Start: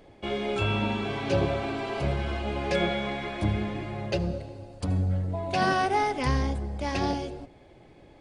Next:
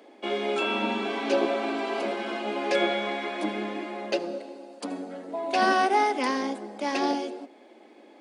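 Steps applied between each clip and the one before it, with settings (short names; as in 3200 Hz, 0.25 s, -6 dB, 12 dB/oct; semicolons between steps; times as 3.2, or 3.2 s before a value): Chebyshev high-pass 220 Hz, order 6; gain +3 dB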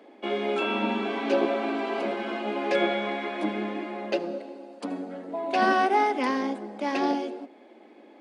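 tone controls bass +4 dB, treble -8 dB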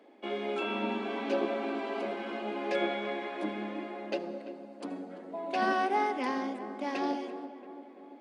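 darkening echo 0.34 s, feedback 64%, low-pass 1600 Hz, level -11.5 dB; gain -6.5 dB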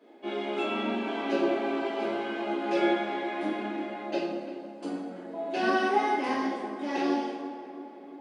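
two-slope reverb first 0.7 s, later 2.3 s, DRR -9.5 dB; gain -6.5 dB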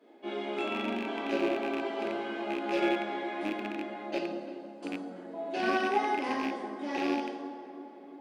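rattling part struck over -36 dBFS, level -24 dBFS; gain -3 dB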